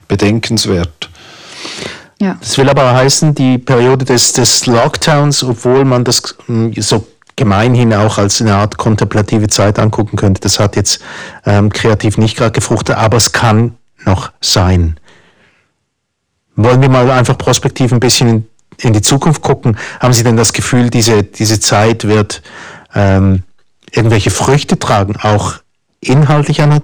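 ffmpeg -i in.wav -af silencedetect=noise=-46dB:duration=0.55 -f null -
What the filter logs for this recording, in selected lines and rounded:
silence_start: 15.64
silence_end: 16.55 | silence_duration: 0.91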